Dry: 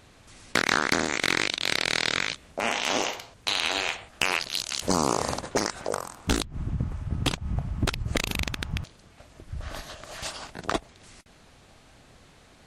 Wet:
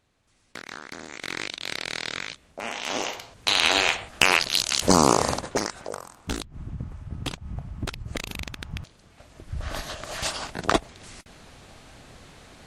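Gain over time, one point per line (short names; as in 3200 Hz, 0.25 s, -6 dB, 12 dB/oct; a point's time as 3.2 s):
0.92 s -16 dB
1.43 s -6 dB
2.7 s -6 dB
3.65 s +6.5 dB
5.1 s +6.5 dB
5.95 s -5.5 dB
8.55 s -5.5 dB
9.89 s +6 dB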